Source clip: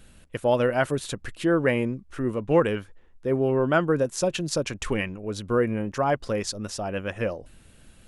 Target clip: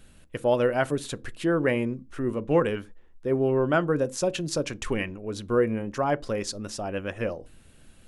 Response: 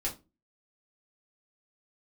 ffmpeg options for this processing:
-filter_complex "[0:a]asplit=2[a][b];[b]equalizer=f=320:w=0.52:g=11.5[c];[1:a]atrim=start_sample=2205,afade=t=out:st=0.18:d=0.01,atrim=end_sample=8379[d];[c][d]afir=irnorm=-1:irlink=0,volume=-23.5dB[e];[a][e]amix=inputs=2:normalize=0,volume=-2.5dB"

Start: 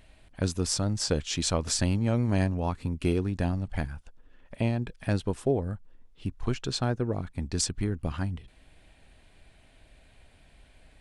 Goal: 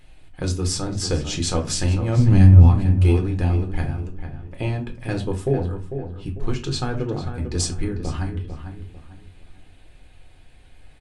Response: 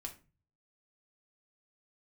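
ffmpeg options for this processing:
-filter_complex "[0:a]asplit=3[a][b][c];[a]afade=t=out:st=2.16:d=0.02[d];[b]asubboost=boost=8:cutoff=210,afade=t=in:st=2.16:d=0.02,afade=t=out:st=2.66:d=0.02[e];[c]afade=t=in:st=2.66:d=0.02[f];[d][e][f]amix=inputs=3:normalize=0,asplit=2[g][h];[h]adelay=448,lowpass=f=2.3k:p=1,volume=-8.5dB,asplit=2[i][j];[j]adelay=448,lowpass=f=2.3k:p=1,volume=0.33,asplit=2[k][l];[l]adelay=448,lowpass=f=2.3k:p=1,volume=0.33,asplit=2[m][n];[n]adelay=448,lowpass=f=2.3k:p=1,volume=0.33[o];[g][i][k][m][o]amix=inputs=5:normalize=0[p];[1:a]atrim=start_sample=2205,asetrate=48510,aresample=44100[q];[p][q]afir=irnorm=-1:irlink=0,volume=7.5dB"

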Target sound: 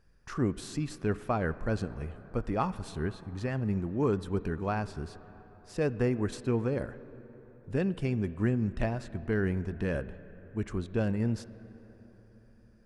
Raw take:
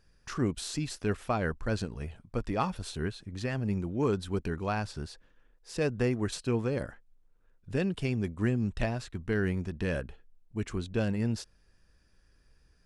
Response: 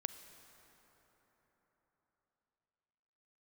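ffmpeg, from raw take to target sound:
-filter_complex "[0:a]asplit=2[a][b];[1:a]atrim=start_sample=2205,lowpass=2.3k[c];[b][c]afir=irnorm=-1:irlink=0,volume=1.5dB[d];[a][d]amix=inputs=2:normalize=0,volume=-5.5dB"

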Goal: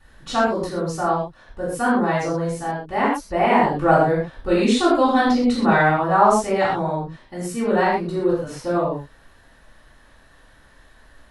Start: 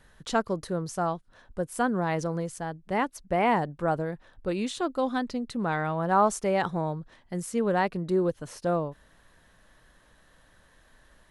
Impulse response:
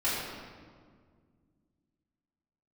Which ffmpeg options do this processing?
-filter_complex "[0:a]asettb=1/sr,asplit=3[a][b][c];[a]atrim=end=3.644[d];[b]atrim=start=3.64:end=5.91,asetpts=PTS-STARTPTS,afade=t=in:d=0.004:c=qsin,afade=t=out:st=2.266:d=0.004:c=qsin,acontrast=31[e];[c]atrim=start=5.906[f];[d][e]acrossfade=d=0.004:c1=hsin:c2=qsin[g];[g][f]acrossfade=d=0.004:c1=qsin:c2=hsin[h];[1:a]atrim=start_sample=2205,atrim=end_sample=6174[i];[h][i]afir=irnorm=-1:irlink=0,volume=-1dB"

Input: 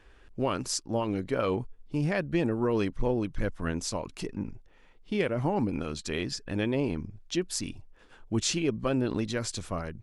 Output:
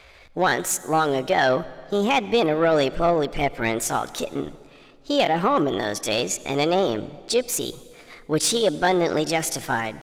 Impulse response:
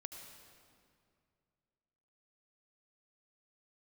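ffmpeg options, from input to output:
-filter_complex "[0:a]asetrate=60591,aresample=44100,atempo=0.727827,asplit=2[a][b];[b]highpass=f=720:p=1,volume=13dB,asoftclip=type=tanh:threshold=-13dB[c];[a][c]amix=inputs=2:normalize=0,lowpass=f=5.5k:p=1,volume=-6dB,asplit=2[d][e];[1:a]atrim=start_sample=2205[f];[e][f]afir=irnorm=-1:irlink=0,volume=-7.5dB[g];[d][g]amix=inputs=2:normalize=0,volume=3.5dB"

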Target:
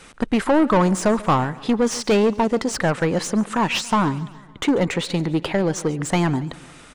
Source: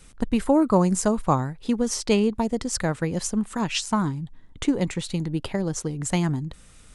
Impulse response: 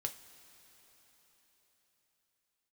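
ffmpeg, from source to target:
-filter_complex "[0:a]asplit=2[a][b];[b]highpass=f=720:p=1,volume=24dB,asoftclip=type=tanh:threshold=-6.5dB[c];[a][c]amix=inputs=2:normalize=0,lowpass=f=1.7k:p=1,volume=-6dB,aecho=1:1:140|280|420|560:0.1|0.056|0.0314|0.0176,volume=-1.5dB"

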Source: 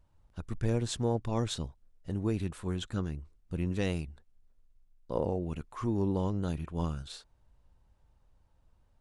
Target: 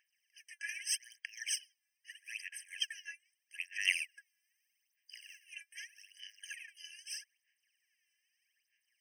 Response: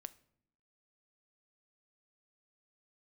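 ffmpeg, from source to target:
-filter_complex "[0:a]asettb=1/sr,asplit=3[a][b][c];[a]atrim=end=3.854[d];[b]atrim=start=3.85:end=5.5,asetpts=PTS-STARTPTS,afade=t=in:d=0.004:c=qsin,afade=t=out:st=1.646:d=0.004:c=qsin,acontrast=31[e];[c]atrim=start=5.496[f];[d][e]acrossfade=d=0.004:c1=hsin:c2=qsin[g];[g][f]acrossfade=d=0.004:c1=qsin:c2=hsin,aphaser=in_gain=1:out_gain=1:delay=3:decay=0.77:speed=0.8:type=sinusoidal,afftfilt=real='re*eq(mod(floor(b*sr/1024/1600),2),1)':imag='im*eq(mod(floor(b*sr/1024/1600),2),1)':win_size=1024:overlap=0.75,volume=5.5dB"

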